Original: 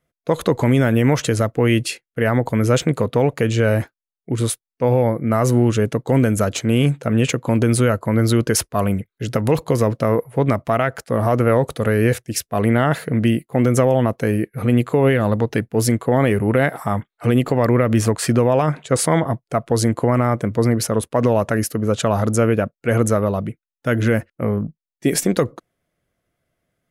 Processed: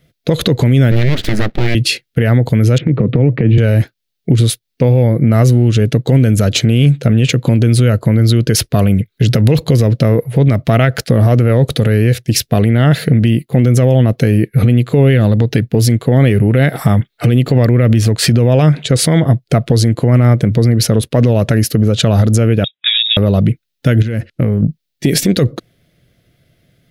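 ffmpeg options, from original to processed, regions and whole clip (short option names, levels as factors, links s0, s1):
-filter_complex "[0:a]asettb=1/sr,asplit=3[s0][s1][s2];[s0]atrim=end=0.914[s3];[s1]atrim=start=0.91:end=1.75,asetpts=PTS-STARTPTS,afade=t=in:d=0.004:c=qsin,afade=t=out:st=0.836:d=0.004:c=qsin,highshelf=f=2400:t=q:w=3:g=-9,aeval=exprs='abs(val(0))':c=same[s4];[s2]atrim=start=1.746[s5];[s3][s4]acrossfade=d=0.004:c1=hsin:c2=qsin[s6];[s6][s5]acrossfade=d=0.004:c1=qsin:c2=hsin,asettb=1/sr,asplit=3[s7][s8][s9];[s7]atrim=end=2.784[s10];[s8]atrim=start=2.78:end=3.58,asetpts=PTS-STARTPTS,afade=t=in:d=0.004:c=qsin,afade=t=out:st=0.796:d=0.004:c=qsin,highpass=f=120:w=0.5412,highpass=f=120:w=1.3066,equalizer=f=120:t=q:w=4:g=7,equalizer=f=200:t=q:w=4:g=5,equalizer=f=310:t=q:w=4:g=7,equalizer=f=730:t=q:w=4:g=-7,equalizer=f=1500:t=q:w=4:g=-6,lowpass=f=2200:w=0.5412,lowpass=f=2200:w=1.3066,acompressor=threshold=0.158:ratio=6:attack=3.2:release=140:knee=1:detection=peak[s11];[s9]atrim=start=3.576[s12];[s10][s11]acrossfade=d=0.004:c1=hsin:c2=qsin[s13];[s13][s12]acrossfade=d=0.004:c1=qsin:c2=hsin,asettb=1/sr,asplit=3[s14][s15][s16];[s14]atrim=end=22.644[s17];[s15]atrim=start=22.64:end=23.17,asetpts=PTS-STARTPTS,afade=t=in:d=0.004:c=qsin,afade=t=out:st=0.526:d=0.004:c=qsin,highpass=f=360:p=1,acompressor=threshold=0.0316:ratio=8:attack=3.2:release=140:knee=1:detection=peak,lowpass=f=3300:t=q:w=0.5098,lowpass=f=3300:t=q:w=0.6013,lowpass=f=3300:t=q:w=0.9,lowpass=f=3300:t=q:w=2.563,afreqshift=-3900[s18];[s16]atrim=start=23.166[s19];[s17][s18]acrossfade=d=0.004:c1=hsin:c2=qsin[s20];[s20][s19]acrossfade=d=0.004:c1=qsin:c2=hsin,asettb=1/sr,asplit=3[s21][s22][s23];[s21]atrim=end=24.024[s24];[s22]atrim=start=24.02:end=24.63,asetpts=PTS-STARTPTS,afade=t=in:d=0.004:c=qsin,afade=t=out:st=0.606:d=0.004:c=qsin,lowpass=12000,acompressor=threshold=0.0398:ratio=12:attack=3.2:release=140:knee=1:detection=peak[s25];[s23]atrim=start=24.626[s26];[s24][s25]acrossfade=d=0.004:c1=hsin:c2=qsin[s27];[s27][s26]acrossfade=d=0.004:c1=qsin:c2=hsin,equalizer=f=125:t=o:w=1:g=7,equalizer=f=1000:t=o:w=1:g=-12,equalizer=f=4000:t=o:w=1:g=7,equalizer=f=8000:t=o:w=1:g=-6,acompressor=threshold=0.0708:ratio=6,alimiter=level_in=7.94:limit=0.891:release=50:level=0:latency=1,volume=0.891"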